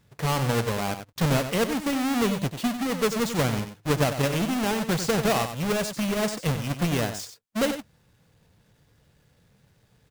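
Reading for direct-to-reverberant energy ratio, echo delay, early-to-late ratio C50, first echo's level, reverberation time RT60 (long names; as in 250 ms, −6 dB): no reverb audible, 94 ms, no reverb audible, −9.5 dB, no reverb audible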